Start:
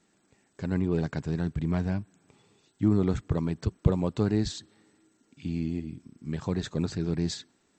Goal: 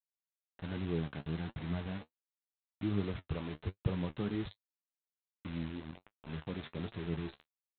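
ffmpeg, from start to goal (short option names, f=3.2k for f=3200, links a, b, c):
-af "aresample=8000,acrusher=bits=5:mix=0:aa=0.000001,aresample=44100,flanger=delay=8.4:depth=6.8:regen=41:speed=1.3:shape=triangular,volume=-6.5dB"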